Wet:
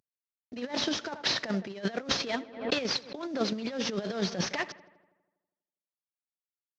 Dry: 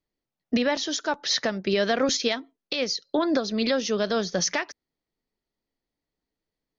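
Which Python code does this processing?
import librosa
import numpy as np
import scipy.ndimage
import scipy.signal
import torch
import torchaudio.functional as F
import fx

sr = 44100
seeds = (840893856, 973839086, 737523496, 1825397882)

y = fx.cvsd(x, sr, bps=32000)
y = fx.echo_filtered(y, sr, ms=81, feedback_pct=63, hz=3600.0, wet_db=-20.0)
y = fx.over_compress(y, sr, threshold_db=-29.0, ratio=-0.5)
y = fx.transient(y, sr, attack_db=6, sustain_db=0)
y = scipy.signal.sosfilt(scipy.signal.butter(2, 100.0, 'highpass', fs=sr, output='sos'), y)
y = fx.low_shelf(y, sr, hz=130.0, db=5.0)
y = fx.pre_swell(y, sr, db_per_s=110.0, at=(2.18, 4.4))
y = y * librosa.db_to_amplitude(-4.5)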